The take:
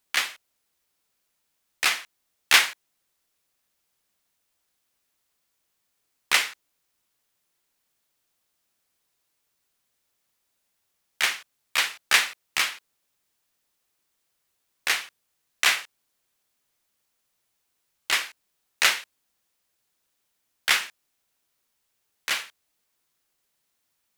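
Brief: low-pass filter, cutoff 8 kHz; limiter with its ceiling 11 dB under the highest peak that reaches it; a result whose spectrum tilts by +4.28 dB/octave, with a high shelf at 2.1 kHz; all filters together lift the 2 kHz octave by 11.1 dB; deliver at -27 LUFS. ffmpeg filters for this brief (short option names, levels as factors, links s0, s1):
-af "lowpass=8000,equalizer=f=2000:t=o:g=8,highshelf=f=2100:g=9,volume=0.422,alimiter=limit=0.237:level=0:latency=1"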